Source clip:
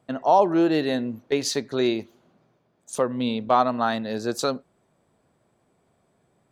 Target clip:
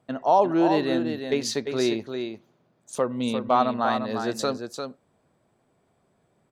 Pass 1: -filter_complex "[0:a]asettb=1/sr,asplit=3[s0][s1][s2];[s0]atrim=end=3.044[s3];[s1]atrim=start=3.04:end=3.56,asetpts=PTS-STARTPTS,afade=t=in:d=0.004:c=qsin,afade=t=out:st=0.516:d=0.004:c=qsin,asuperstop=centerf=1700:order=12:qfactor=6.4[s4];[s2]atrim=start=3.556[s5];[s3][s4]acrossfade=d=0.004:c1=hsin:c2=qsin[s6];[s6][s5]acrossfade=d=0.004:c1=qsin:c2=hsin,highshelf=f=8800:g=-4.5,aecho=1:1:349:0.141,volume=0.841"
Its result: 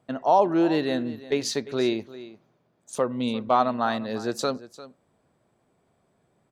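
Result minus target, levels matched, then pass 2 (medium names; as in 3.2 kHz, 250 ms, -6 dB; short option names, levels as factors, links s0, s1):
echo-to-direct -10 dB
-filter_complex "[0:a]asettb=1/sr,asplit=3[s0][s1][s2];[s0]atrim=end=3.044[s3];[s1]atrim=start=3.04:end=3.56,asetpts=PTS-STARTPTS,afade=t=in:d=0.004:c=qsin,afade=t=out:st=0.516:d=0.004:c=qsin,asuperstop=centerf=1700:order=12:qfactor=6.4[s4];[s2]atrim=start=3.556[s5];[s3][s4]acrossfade=d=0.004:c1=hsin:c2=qsin[s6];[s6][s5]acrossfade=d=0.004:c1=qsin:c2=hsin,highshelf=f=8800:g=-4.5,aecho=1:1:349:0.447,volume=0.841"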